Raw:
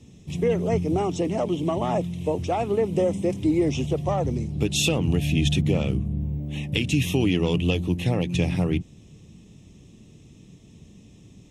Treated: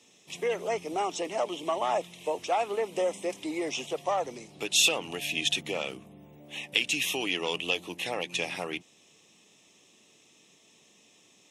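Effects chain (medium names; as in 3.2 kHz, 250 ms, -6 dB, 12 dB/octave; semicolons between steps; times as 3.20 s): high-pass 730 Hz 12 dB/octave; trim +2 dB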